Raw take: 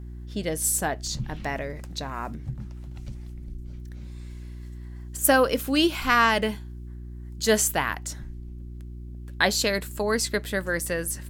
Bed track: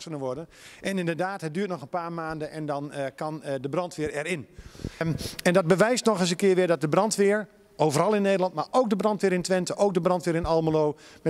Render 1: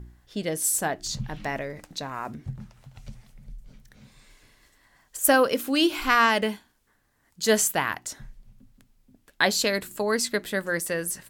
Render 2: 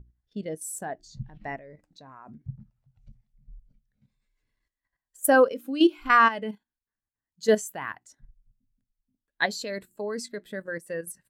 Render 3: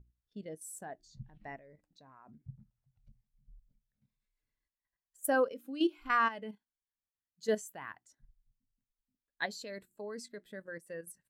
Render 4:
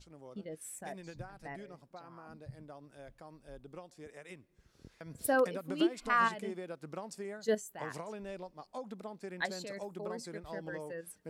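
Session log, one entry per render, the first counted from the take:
de-hum 60 Hz, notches 6
level held to a coarse grid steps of 10 dB; spectral contrast expander 1.5:1
trim -10.5 dB
add bed track -21 dB

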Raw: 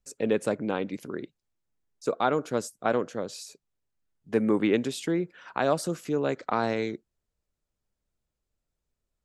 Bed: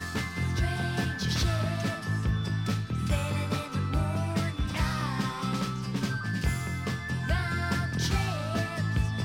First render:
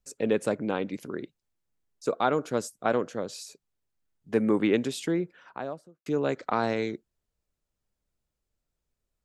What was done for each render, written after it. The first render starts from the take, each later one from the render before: 5.05–6.06 s: studio fade out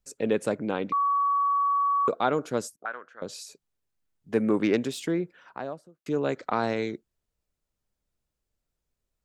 0.92–2.08 s: bleep 1.13 kHz -21 dBFS; 2.76–3.22 s: auto-wah 300–1500 Hz, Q 3.2, up, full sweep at -31.5 dBFS; 4.43–6.17 s: self-modulated delay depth 0.064 ms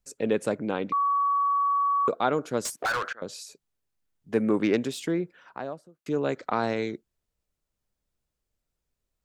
2.65–3.13 s: overdrive pedal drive 31 dB, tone 5 kHz, clips at -19.5 dBFS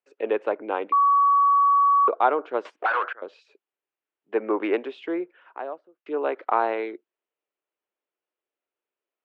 Chebyshev band-pass 340–2900 Hz, order 3; dynamic bell 890 Hz, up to +8 dB, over -40 dBFS, Q 1.1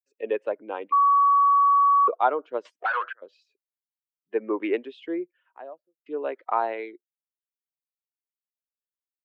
expander on every frequency bin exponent 1.5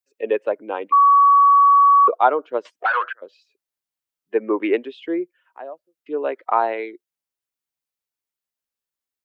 trim +6 dB

